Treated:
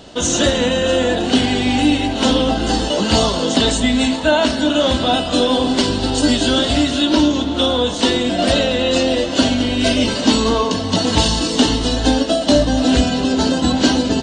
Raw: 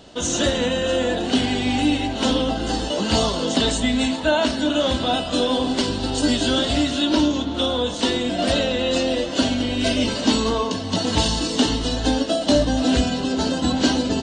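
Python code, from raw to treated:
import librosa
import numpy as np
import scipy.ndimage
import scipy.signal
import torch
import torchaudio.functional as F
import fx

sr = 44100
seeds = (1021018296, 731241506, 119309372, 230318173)

p1 = fx.echo_feedback(x, sr, ms=239, feedback_pct=60, wet_db=-20)
p2 = fx.rider(p1, sr, range_db=10, speed_s=0.5)
p3 = p1 + F.gain(torch.from_numpy(p2), -0.5).numpy()
y = F.gain(torch.from_numpy(p3), -1.0).numpy()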